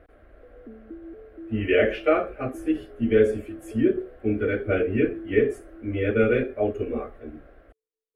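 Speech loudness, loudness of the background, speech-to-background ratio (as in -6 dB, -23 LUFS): -24.5 LUFS, -43.0 LUFS, 18.5 dB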